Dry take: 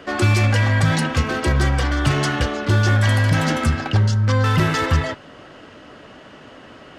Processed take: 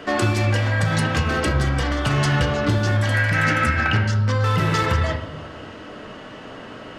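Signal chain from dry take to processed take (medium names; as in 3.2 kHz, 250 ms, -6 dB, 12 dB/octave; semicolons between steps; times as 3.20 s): 3.14–4.12 s: high-order bell 1.9 kHz +10 dB 1.1 oct; compression 4:1, threshold -21 dBFS, peak gain reduction 9 dB; reverberation RT60 1.1 s, pre-delay 4 ms, DRR 2.5 dB; trim +2.5 dB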